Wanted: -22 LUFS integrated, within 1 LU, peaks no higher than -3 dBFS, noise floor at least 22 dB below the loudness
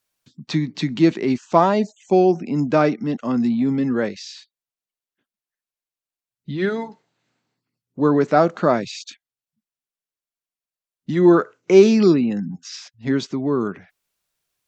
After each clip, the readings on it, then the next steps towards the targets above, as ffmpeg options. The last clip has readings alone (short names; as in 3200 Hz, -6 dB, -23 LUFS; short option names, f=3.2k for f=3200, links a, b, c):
loudness -19.0 LUFS; peak -1.5 dBFS; loudness target -22.0 LUFS
-> -af "volume=-3dB"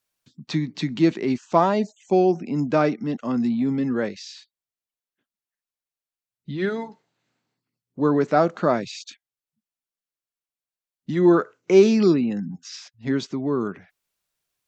loudness -22.0 LUFS; peak -4.5 dBFS; noise floor -93 dBFS